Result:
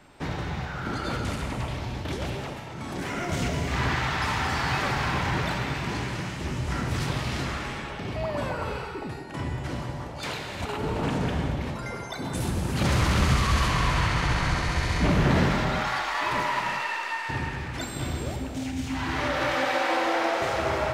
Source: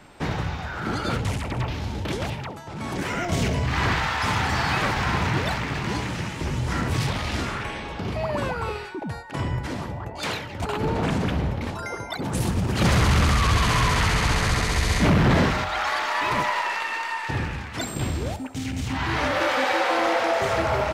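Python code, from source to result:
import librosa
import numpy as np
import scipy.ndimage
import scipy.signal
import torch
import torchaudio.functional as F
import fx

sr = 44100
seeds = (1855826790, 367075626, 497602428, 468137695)

y = fx.high_shelf(x, sr, hz=6300.0, db=-10.5, at=(13.68, 15.1))
y = fx.rev_gated(y, sr, seeds[0], gate_ms=400, shape='flat', drr_db=2.0)
y = y * 10.0 ** (-5.0 / 20.0)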